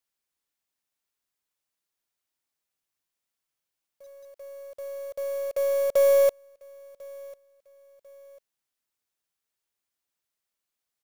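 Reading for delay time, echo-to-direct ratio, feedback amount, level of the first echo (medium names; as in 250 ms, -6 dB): 1046 ms, -22.5 dB, 37%, -23.0 dB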